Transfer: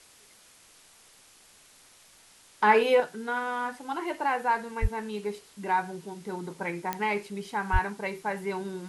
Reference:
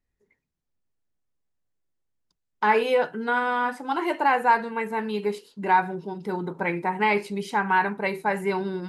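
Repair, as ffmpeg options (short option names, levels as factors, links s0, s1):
-filter_complex "[0:a]adeclick=t=4,asplit=3[s0][s1][s2];[s0]afade=t=out:st=4.81:d=0.02[s3];[s1]highpass=f=140:w=0.5412,highpass=f=140:w=1.3066,afade=t=in:st=4.81:d=0.02,afade=t=out:st=4.93:d=0.02[s4];[s2]afade=t=in:st=4.93:d=0.02[s5];[s3][s4][s5]amix=inputs=3:normalize=0,asplit=3[s6][s7][s8];[s6]afade=t=out:st=7.72:d=0.02[s9];[s7]highpass=f=140:w=0.5412,highpass=f=140:w=1.3066,afade=t=in:st=7.72:d=0.02,afade=t=out:st=7.84:d=0.02[s10];[s8]afade=t=in:st=7.84:d=0.02[s11];[s9][s10][s11]amix=inputs=3:normalize=0,afwtdn=0.002,asetnsamples=n=441:p=0,asendcmd='3 volume volume 6.5dB',volume=1"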